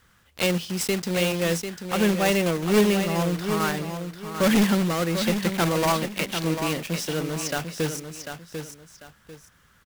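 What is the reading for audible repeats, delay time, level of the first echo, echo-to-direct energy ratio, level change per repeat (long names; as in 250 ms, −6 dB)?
2, 745 ms, −8.0 dB, −7.5 dB, −11.0 dB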